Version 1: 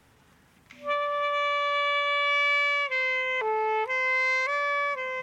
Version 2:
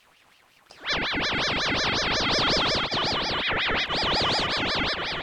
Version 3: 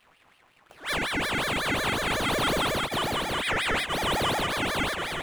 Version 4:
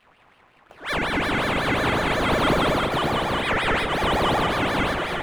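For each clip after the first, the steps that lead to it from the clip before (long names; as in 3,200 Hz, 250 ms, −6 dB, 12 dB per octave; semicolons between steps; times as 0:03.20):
echo through a band-pass that steps 709 ms, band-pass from 490 Hz, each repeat 0.7 octaves, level −9 dB; ring modulator whose carrier an LFO sweeps 1,900 Hz, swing 55%, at 5.5 Hz; level +4 dB
running median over 9 samples
high-shelf EQ 3,900 Hz −11.5 dB; delay that swaps between a low-pass and a high-pass 114 ms, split 1,400 Hz, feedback 52%, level −4 dB; level +5 dB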